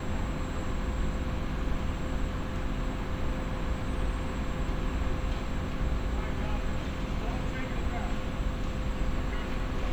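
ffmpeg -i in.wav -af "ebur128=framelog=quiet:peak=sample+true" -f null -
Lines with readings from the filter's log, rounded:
Integrated loudness:
  I:         -33.9 LUFS
  Threshold: -43.9 LUFS
Loudness range:
  LRA:         0.5 LU
  Threshold: -53.9 LUFS
  LRA low:   -34.1 LUFS
  LRA high:  -33.6 LUFS
Sample peak:
  Peak:      -18.1 dBFS
True peak:
  Peak:      -18.1 dBFS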